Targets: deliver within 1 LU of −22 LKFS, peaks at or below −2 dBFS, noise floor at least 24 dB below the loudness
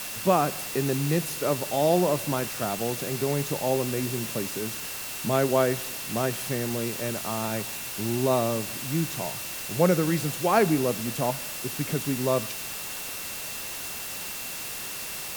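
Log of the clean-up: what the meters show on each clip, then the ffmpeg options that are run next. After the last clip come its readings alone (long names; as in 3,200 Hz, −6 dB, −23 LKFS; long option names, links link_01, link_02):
interfering tone 2,700 Hz; level of the tone −44 dBFS; background noise floor −35 dBFS; target noise floor −51 dBFS; integrated loudness −27.0 LKFS; sample peak −7.5 dBFS; target loudness −22.0 LKFS
→ -af "bandreject=frequency=2700:width=30"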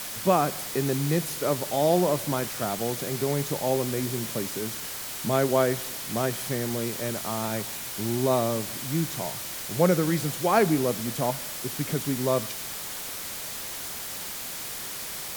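interfering tone none found; background noise floor −36 dBFS; target noise floor −51 dBFS
→ -af "afftdn=noise_reduction=15:noise_floor=-36"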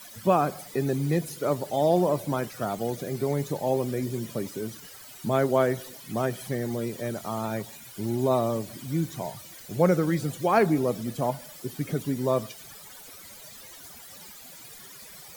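background noise floor −46 dBFS; target noise floor −52 dBFS
→ -af "afftdn=noise_reduction=6:noise_floor=-46"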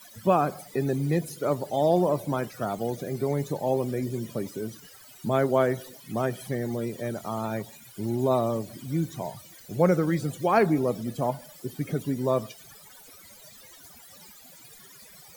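background noise floor −50 dBFS; target noise floor −52 dBFS
→ -af "afftdn=noise_reduction=6:noise_floor=-50"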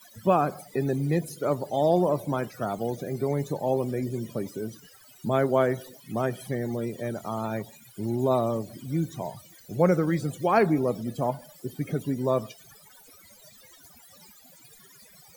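background noise floor −54 dBFS; integrated loudness −27.5 LKFS; sample peak −8.0 dBFS; target loudness −22.0 LKFS
→ -af "volume=5.5dB"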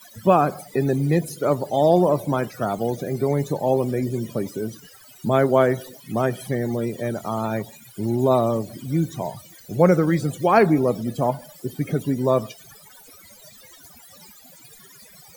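integrated loudness −22.0 LKFS; sample peak −2.5 dBFS; background noise floor −48 dBFS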